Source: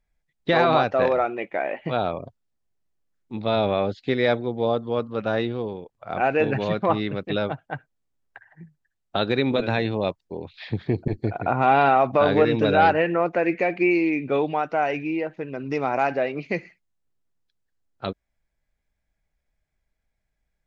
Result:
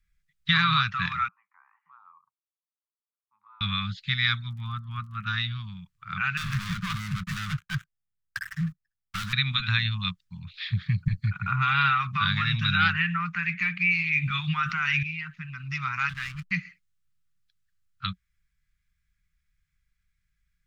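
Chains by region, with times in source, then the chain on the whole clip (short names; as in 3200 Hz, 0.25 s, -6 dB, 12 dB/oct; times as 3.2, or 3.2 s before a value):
1.28–3.61 compressor 2:1, threshold -32 dBFS + Butterworth band-pass 930 Hz, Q 3.1 + air absorption 230 m
4.49–5.25 LPF 2100 Hz + crackle 61/s -52 dBFS
6.37–9.33 median filter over 15 samples + compressor 2.5:1, threshold -42 dBFS + sample leveller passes 5
13.92–15.03 notches 60/120/180/240/300/360/420/480/540 Hz + fast leveller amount 70%
16.09–16.51 notch 440 Hz, Q 11 + backlash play -29 dBFS
whole clip: Chebyshev band-stop 180–1200 Hz, order 4; dynamic EQ 3500 Hz, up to +7 dB, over -50 dBFS, Q 5.1; gain +3 dB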